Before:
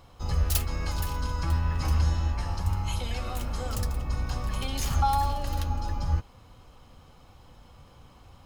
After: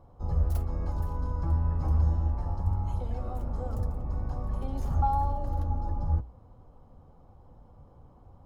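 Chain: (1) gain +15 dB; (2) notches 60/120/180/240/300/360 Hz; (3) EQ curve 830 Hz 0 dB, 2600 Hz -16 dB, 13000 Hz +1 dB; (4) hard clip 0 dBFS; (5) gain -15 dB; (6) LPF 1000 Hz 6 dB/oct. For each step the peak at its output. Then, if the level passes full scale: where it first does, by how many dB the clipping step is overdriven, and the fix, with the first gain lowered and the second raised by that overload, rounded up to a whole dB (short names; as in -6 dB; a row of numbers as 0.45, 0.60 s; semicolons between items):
+4.0, +4.0, +4.5, 0.0, -15.0, -15.5 dBFS; step 1, 4.5 dB; step 1 +10 dB, step 5 -10 dB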